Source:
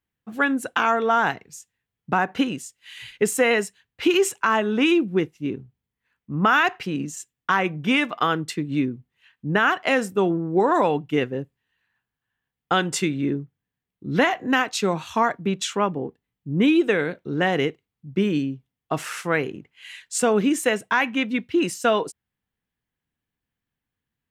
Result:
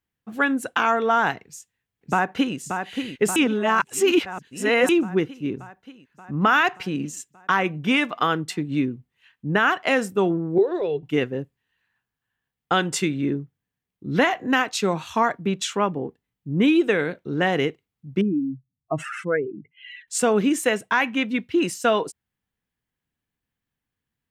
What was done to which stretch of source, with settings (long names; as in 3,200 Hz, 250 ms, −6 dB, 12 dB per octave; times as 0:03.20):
0:01.43–0:02.57: delay throw 580 ms, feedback 70%, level −6.5 dB
0:03.36–0:04.89: reverse
0:10.58–0:11.03: drawn EQ curve 130 Hz 0 dB, 250 Hz −25 dB, 380 Hz +5 dB, 940 Hz −21 dB, 1,800 Hz −13 dB, 4,200 Hz −3 dB, 7,500 Hz −27 dB
0:18.21–0:20.08: expanding power law on the bin magnitudes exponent 2.5